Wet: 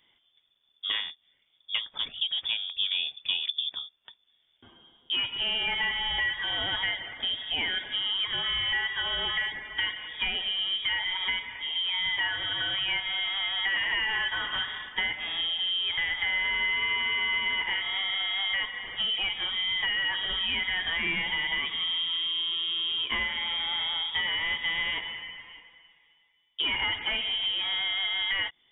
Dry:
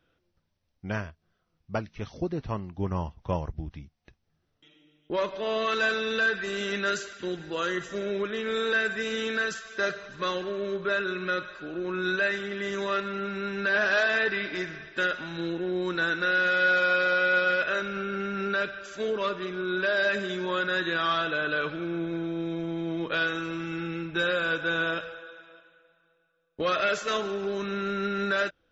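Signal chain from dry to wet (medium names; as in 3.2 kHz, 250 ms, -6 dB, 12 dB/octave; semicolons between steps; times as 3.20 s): compression 4:1, threshold -31 dBFS, peak gain reduction 10 dB; frequency inversion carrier 3.5 kHz; trim +4.5 dB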